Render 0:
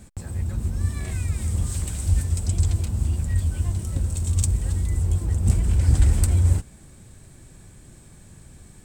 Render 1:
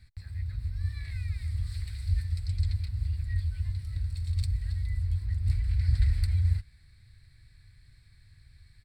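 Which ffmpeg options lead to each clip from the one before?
-af "firequalizer=gain_entry='entry(110,0);entry(170,-17);entry(310,-21);entry(470,-22);entry(920,-16);entry(2000,5);entry(3000,-9);entry(4300,8);entry(6400,-22);entry(10000,-12)':delay=0.05:min_phase=1,volume=0.447"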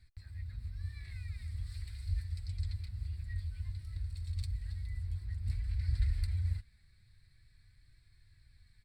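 -af "flanger=delay=2.8:depth=2.8:regen=53:speed=0.49:shape=sinusoidal,volume=0.75"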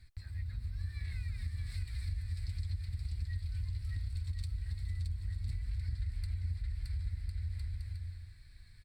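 -filter_complex "[0:a]asplit=2[s0][s1];[s1]aecho=0:1:620|1054|1358|1570|1719:0.631|0.398|0.251|0.158|0.1[s2];[s0][s2]amix=inputs=2:normalize=0,acompressor=threshold=0.0126:ratio=6,volume=1.68"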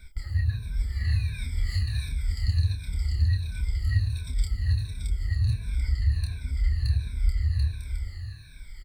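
-filter_complex "[0:a]afftfilt=real='re*pow(10,24/40*sin(2*PI*(1.6*log(max(b,1)*sr/1024/100)/log(2)-(-1.4)*(pts-256)/sr)))':imag='im*pow(10,24/40*sin(2*PI*(1.6*log(max(b,1)*sr/1024/100)/log(2)-(-1.4)*(pts-256)/sr)))':win_size=1024:overlap=0.75,asplit=2[s0][s1];[s1]adelay=28,volume=0.501[s2];[s0][s2]amix=inputs=2:normalize=0,volume=2.11"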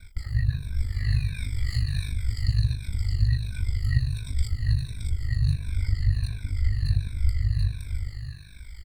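-af "aeval=exprs='val(0)*sin(2*PI*25*n/s)':c=same,volume=1.58"

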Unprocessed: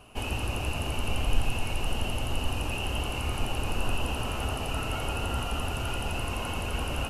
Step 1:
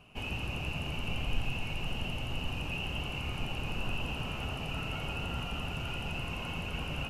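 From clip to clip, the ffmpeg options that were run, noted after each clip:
-af "equalizer=f=160:t=o:w=0.67:g=11,equalizer=f=2500:t=o:w=0.67:g=7,equalizer=f=10000:t=o:w=0.67:g=-8,volume=0.398"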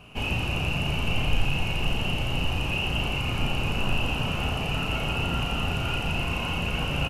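-filter_complex "[0:a]asplit=2[s0][s1];[s1]adelay=35,volume=0.562[s2];[s0][s2]amix=inputs=2:normalize=0,volume=2.51"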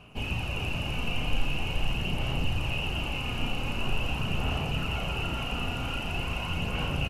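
-filter_complex "[0:a]aphaser=in_gain=1:out_gain=1:delay=4.2:decay=0.32:speed=0.44:type=sinusoidal,asplit=2[s0][s1];[s1]aecho=0:1:425:0.473[s2];[s0][s2]amix=inputs=2:normalize=0,volume=0.531"

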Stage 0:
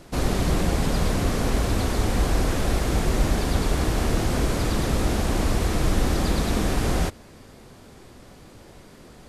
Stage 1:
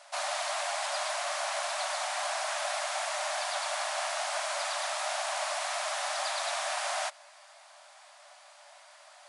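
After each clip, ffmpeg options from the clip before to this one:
-af "afftfilt=real='re*between(b*sr/4096,570,11000)':imag='im*between(b*sr/4096,570,11000)':win_size=4096:overlap=0.75,volume=0.891"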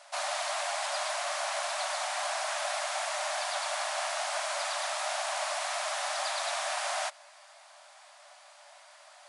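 -af anull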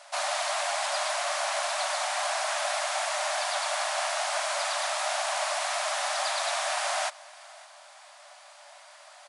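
-af "aecho=1:1:560:0.0708,volume=1.5"

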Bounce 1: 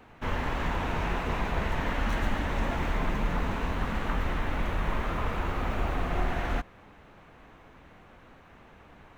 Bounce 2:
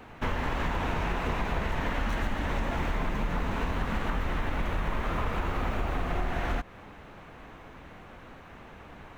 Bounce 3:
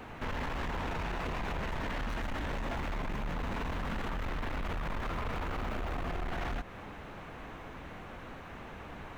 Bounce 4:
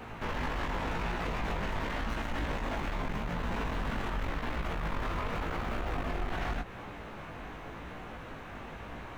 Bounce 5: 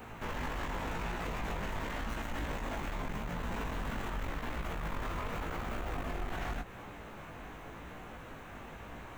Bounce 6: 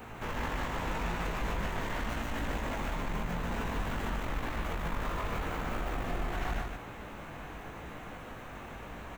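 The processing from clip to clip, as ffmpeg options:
-af "acompressor=threshold=0.0282:ratio=6,volume=1.88"
-af "alimiter=level_in=1.26:limit=0.0631:level=0:latency=1:release=20,volume=0.794,asoftclip=type=tanh:threshold=0.0211,volume=1.33"
-af "flanger=delay=17:depth=3.1:speed=0.88,volume=1.78"
-af "aexciter=amount=1.3:drive=8.7:freq=6600,volume=0.668"
-af "aecho=1:1:147:0.631,volume=1.19"

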